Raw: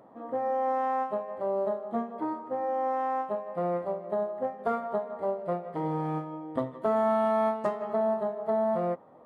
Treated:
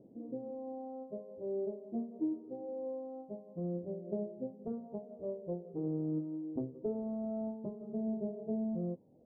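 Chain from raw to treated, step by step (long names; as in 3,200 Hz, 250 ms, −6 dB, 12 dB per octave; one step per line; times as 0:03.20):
inverse Chebyshev low-pass filter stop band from 2,500 Hz, stop band 80 dB
phase shifter 0.24 Hz, delay 3.2 ms, feedback 39%
0:04.49–0:06.61: highs frequency-modulated by the lows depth 0.13 ms
level −2.5 dB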